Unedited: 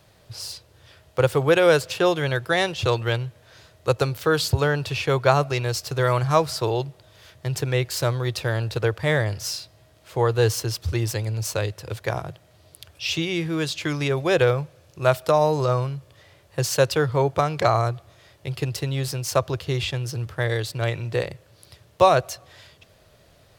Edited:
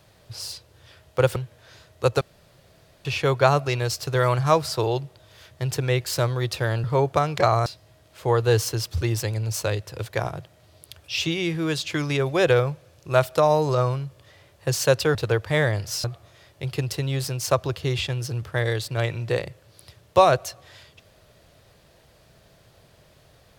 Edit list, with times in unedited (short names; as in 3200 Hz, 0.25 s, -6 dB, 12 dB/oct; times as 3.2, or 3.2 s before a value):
1.36–3.2 cut
4.05–4.89 room tone
8.68–9.57 swap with 17.06–17.88